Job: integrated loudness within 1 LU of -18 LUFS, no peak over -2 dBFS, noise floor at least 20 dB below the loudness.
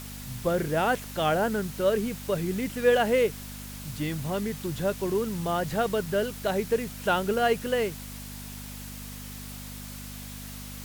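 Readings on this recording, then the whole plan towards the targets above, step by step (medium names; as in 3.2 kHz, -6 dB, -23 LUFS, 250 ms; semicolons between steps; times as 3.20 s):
hum 50 Hz; highest harmonic 250 Hz; hum level -39 dBFS; noise floor -40 dBFS; noise floor target -48 dBFS; loudness -27.5 LUFS; peak level -9.5 dBFS; loudness target -18.0 LUFS
-> de-hum 50 Hz, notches 5; noise print and reduce 8 dB; trim +9.5 dB; peak limiter -2 dBFS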